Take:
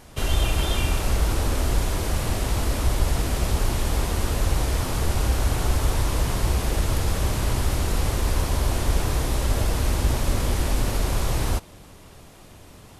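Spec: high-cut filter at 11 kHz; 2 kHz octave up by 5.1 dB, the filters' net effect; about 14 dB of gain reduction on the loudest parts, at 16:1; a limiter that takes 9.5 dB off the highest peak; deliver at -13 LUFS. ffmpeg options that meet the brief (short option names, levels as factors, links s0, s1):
-af "lowpass=11000,equalizer=f=2000:t=o:g=6.5,acompressor=threshold=0.0316:ratio=16,volume=21.1,alimiter=limit=0.841:level=0:latency=1"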